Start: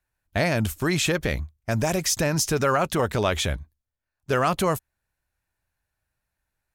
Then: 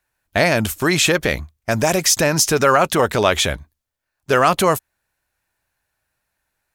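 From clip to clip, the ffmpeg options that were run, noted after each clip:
-af "lowshelf=f=170:g=-10.5,volume=8.5dB"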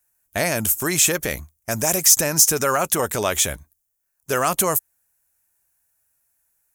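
-af "aexciter=amount=3.3:drive=9.1:freq=5.9k,volume=-6.5dB"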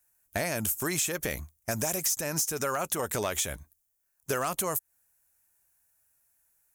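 -af "acompressor=threshold=-25dB:ratio=6,asoftclip=type=hard:threshold=-19dB,volume=-1.5dB"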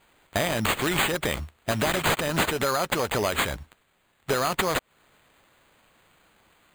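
-filter_complex "[0:a]asplit=2[a][b];[b]alimiter=level_in=8dB:limit=-24dB:level=0:latency=1:release=285,volume=-8dB,volume=0dB[c];[a][c]amix=inputs=2:normalize=0,acrusher=samples=8:mix=1:aa=0.000001,volume=3dB"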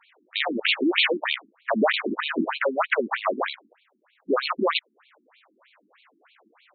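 -af "afftfilt=real='re*between(b*sr/1024,250*pow(3200/250,0.5+0.5*sin(2*PI*3.2*pts/sr))/1.41,250*pow(3200/250,0.5+0.5*sin(2*PI*3.2*pts/sr))*1.41)':imag='im*between(b*sr/1024,250*pow(3200/250,0.5+0.5*sin(2*PI*3.2*pts/sr))/1.41,250*pow(3200/250,0.5+0.5*sin(2*PI*3.2*pts/sr))*1.41)':win_size=1024:overlap=0.75,volume=8.5dB"

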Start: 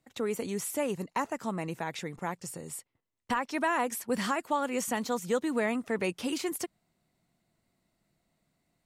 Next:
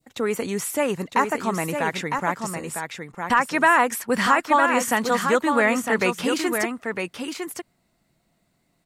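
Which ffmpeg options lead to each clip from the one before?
-af "adynamicequalizer=threshold=0.00631:dfrequency=1500:dqfactor=0.85:tfrequency=1500:tqfactor=0.85:attack=5:release=100:ratio=0.375:range=4:mode=boostabove:tftype=bell,aecho=1:1:956:0.501,volume=6.5dB"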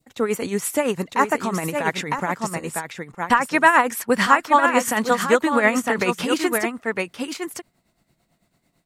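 -af "tremolo=f=9:d=0.65,volume=4.5dB"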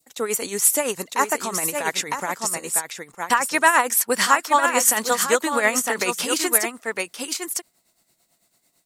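-af "bass=f=250:g=-11,treble=f=4k:g=13,volume=-2dB"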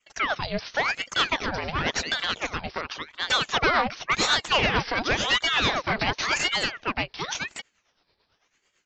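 -af "aresample=11025,asoftclip=type=tanh:threshold=-18dB,aresample=44100,aeval=exprs='val(0)*sin(2*PI*1400*n/s+1400*0.85/0.92*sin(2*PI*0.92*n/s))':c=same,volume=4dB"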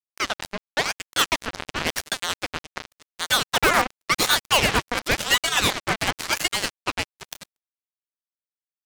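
-filter_complex "[0:a]asplit=2[a][b];[b]aeval=exprs='(mod(5.01*val(0)+1,2)-1)/5.01':c=same,volume=-10dB[c];[a][c]amix=inputs=2:normalize=0,acrusher=bits=2:mix=0:aa=0.5"

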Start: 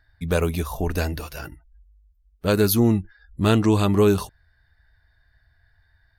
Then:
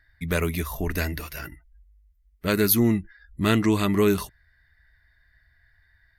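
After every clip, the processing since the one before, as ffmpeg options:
-af "equalizer=f=100:t=o:w=0.33:g=-6,equalizer=f=500:t=o:w=0.33:g=-6,equalizer=f=800:t=o:w=0.33:g=-7,equalizer=f=2k:t=o:w=0.33:g=12,equalizer=f=12.5k:t=o:w=0.33:g=7,volume=-1.5dB"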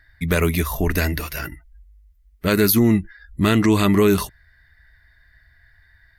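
-af "alimiter=limit=-14dB:level=0:latency=1:release=42,volume=7dB"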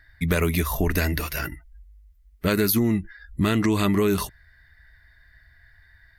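-af "acompressor=threshold=-18dB:ratio=4"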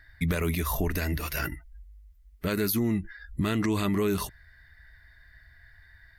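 -af "alimiter=limit=-18dB:level=0:latency=1:release=122"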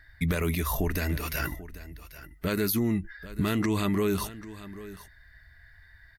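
-af "aecho=1:1:789:0.158"

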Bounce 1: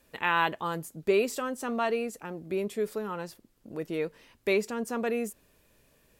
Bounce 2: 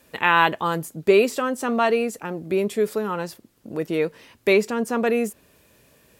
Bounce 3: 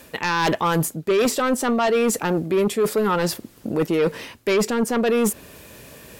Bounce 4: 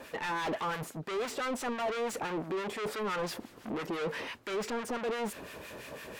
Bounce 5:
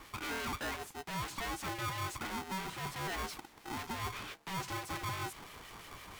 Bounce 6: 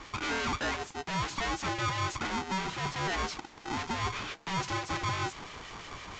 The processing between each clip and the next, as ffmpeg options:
-filter_complex "[0:a]highpass=67,acrossover=split=4000[a][b];[b]alimiter=level_in=10.5dB:limit=-24dB:level=0:latency=1:release=277,volume=-10.5dB[c];[a][c]amix=inputs=2:normalize=0,volume=8.5dB"
-af "areverse,acompressor=threshold=-27dB:ratio=8,areverse,aeval=exprs='0.126*sin(PI/2*2*val(0)/0.126)':c=same,volume=3.5dB"
-filter_complex "[0:a]asoftclip=type=tanh:threshold=-30.5dB,acrossover=split=1200[a][b];[a]aeval=exprs='val(0)*(1-0.7/2+0.7/2*cos(2*PI*5.9*n/s))':c=same[c];[b]aeval=exprs='val(0)*(1-0.7/2-0.7/2*cos(2*PI*5.9*n/s))':c=same[d];[c][d]amix=inputs=2:normalize=0,asplit=2[e][f];[f]highpass=f=720:p=1,volume=13dB,asoftclip=type=tanh:threshold=-23.5dB[g];[e][g]amix=inputs=2:normalize=0,lowpass=f=1.8k:p=1,volume=-6dB"
-af "aeval=exprs='val(0)*sgn(sin(2*PI*570*n/s))':c=same,volume=-5dB"
-af "volume=6.5dB" -ar 16000 -c:a pcm_mulaw

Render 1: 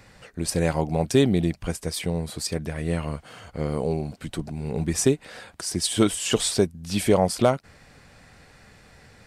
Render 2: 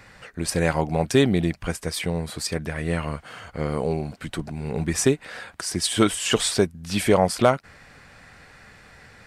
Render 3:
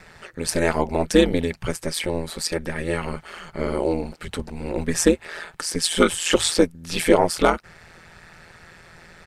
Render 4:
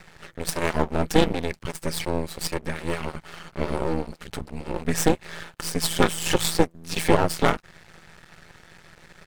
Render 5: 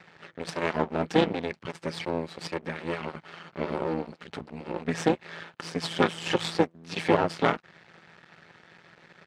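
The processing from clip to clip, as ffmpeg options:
-af "equalizer=f=1.6k:t=o:w=1.7:g=6.5"
-af "aecho=1:1:2.3:0.92,aeval=exprs='val(0)*sin(2*PI*83*n/s)':c=same,volume=2dB"
-af "aeval=exprs='max(val(0),0)':c=same,volume=1dB"
-af "highpass=150,lowpass=4k,volume=-2.5dB"

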